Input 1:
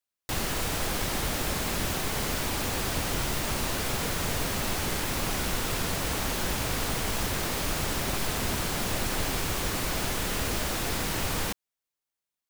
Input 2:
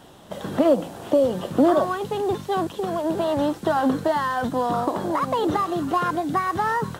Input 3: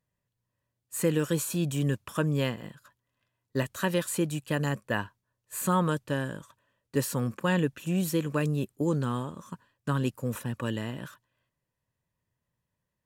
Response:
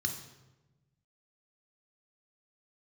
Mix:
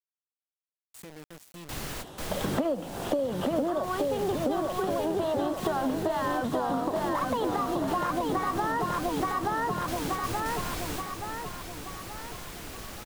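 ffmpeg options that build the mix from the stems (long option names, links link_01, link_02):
-filter_complex "[0:a]adelay=1400,volume=-7dB,asplit=2[link_01][link_02];[link_02]volume=-6dB[link_03];[1:a]adelay=2000,volume=2.5dB,asplit=2[link_04][link_05];[link_05]volume=-4dB[link_06];[2:a]alimiter=limit=-21dB:level=0:latency=1:release=326,acrusher=bits=4:mix=0:aa=0.000001,volume=-15.5dB,asplit=2[link_07][link_08];[link_08]apad=whole_len=612958[link_09];[link_01][link_09]sidechaingate=range=-33dB:threshold=-54dB:ratio=16:detection=peak[link_10];[link_03][link_06]amix=inputs=2:normalize=0,aecho=0:1:877|1754|2631|3508|4385|5262:1|0.46|0.212|0.0973|0.0448|0.0206[link_11];[link_10][link_04][link_07][link_11]amix=inputs=4:normalize=0,acompressor=threshold=-25dB:ratio=10"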